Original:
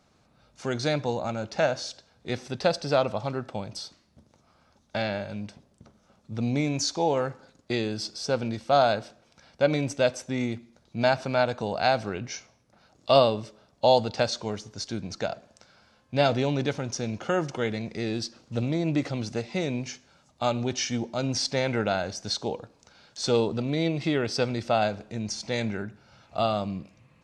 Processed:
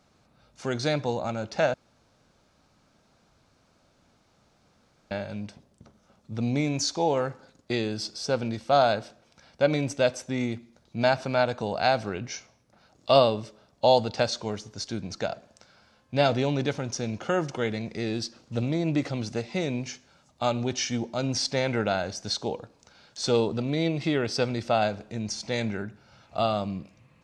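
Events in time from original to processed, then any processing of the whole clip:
0:01.74–0:05.11: fill with room tone

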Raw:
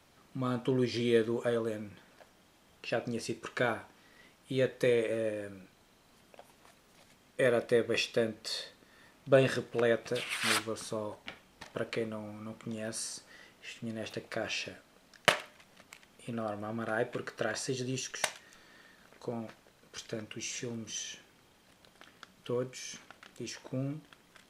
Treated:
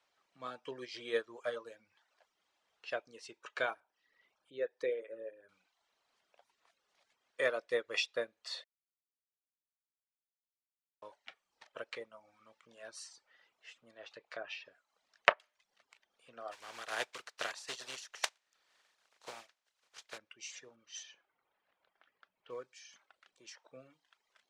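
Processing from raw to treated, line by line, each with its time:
0:03.80–0:05.49: spectral envelope exaggerated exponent 1.5
0:08.64–0:11.02: silence
0:13.92–0:15.40: treble cut that deepens with the level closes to 1,300 Hz, closed at −28.5 dBFS
0:16.51–0:20.17: compressing power law on the bin magnitudes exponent 0.44
0:20.76–0:22.93: low-pass that shuts in the quiet parts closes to 2,100 Hz, open at −33.5 dBFS
whole clip: reverb reduction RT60 0.63 s; three-way crossover with the lows and the highs turned down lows −20 dB, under 490 Hz, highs −20 dB, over 7,900 Hz; expander for the loud parts 1.5 to 1, over −51 dBFS; level +2.5 dB

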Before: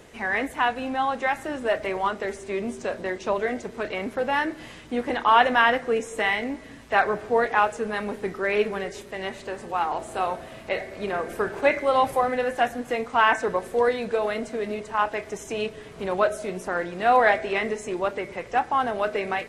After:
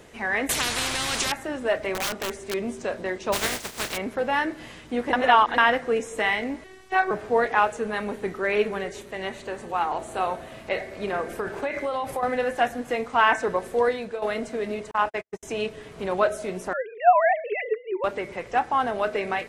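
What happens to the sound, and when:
0:00.49–0:01.32: every bin compressed towards the loudest bin 10 to 1
0:01.93–0:02.54: wrap-around overflow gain 22 dB
0:03.32–0:03.96: compressing power law on the bin magnitudes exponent 0.27
0:05.13–0:05.58: reverse
0:06.64–0:07.11: phases set to zero 377 Hz
0:07.70–0:10.53: notch filter 5,100 Hz
0:11.28–0:12.23: downward compressor 10 to 1, threshold −23 dBFS
0:13.70–0:14.22: fade out equal-power, to −11 dB
0:14.91–0:15.43: noise gate −31 dBFS, range −55 dB
0:16.73–0:18.04: three sine waves on the formant tracks

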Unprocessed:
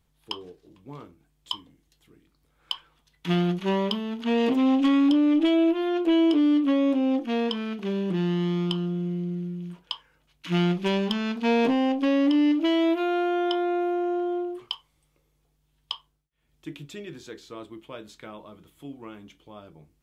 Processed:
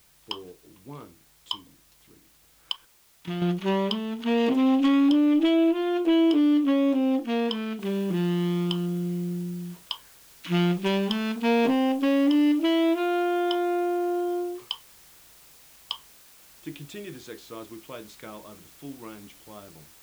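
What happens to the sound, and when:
0:02.72–0:03.42: output level in coarse steps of 15 dB
0:07.80: noise floor change −60 dB −53 dB

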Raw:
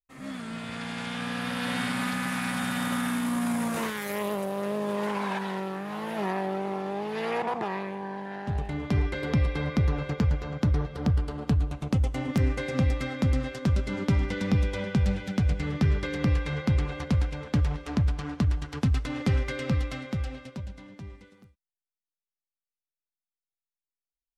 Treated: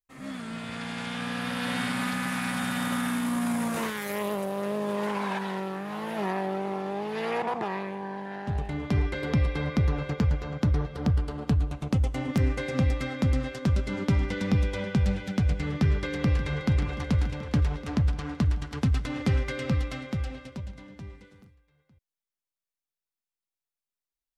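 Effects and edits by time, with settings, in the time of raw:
0:15.61–0:16.76: delay throw 580 ms, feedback 70%, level −13.5 dB

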